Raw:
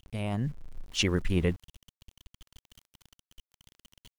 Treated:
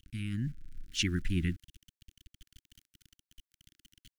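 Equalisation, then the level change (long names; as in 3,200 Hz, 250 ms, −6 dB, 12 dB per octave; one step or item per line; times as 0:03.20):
elliptic band-stop filter 320–1,500 Hz, stop band 40 dB
−2.5 dB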